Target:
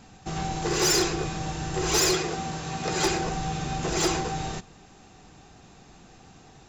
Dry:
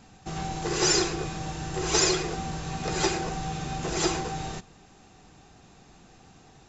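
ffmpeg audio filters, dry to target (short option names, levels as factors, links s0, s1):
-filter_complex "[0:a]asettb=1/sr,asplit=3[s0][s1][s2];[s0]atrim=end=2.154[s3];[s1]atrim=start=2.15:end=3.05,asetpts=PTS-STARTPTS,afade=t=in:d=0.004:c=qsin,afade=t=out:st=0.896:d=0.004:c=qsin,highpass=f=140:p=1[s4];[s2]atrim=start=3.046[s5];[s3][s4]acrossfade=d=0.004:c1=hsin:c2=qsin[s6];[s6][s5]acrossfade=d=0.004:c1=qsin:c2=hsin,asoftclip=type=hard:threshold=0.0944,volume=1.33"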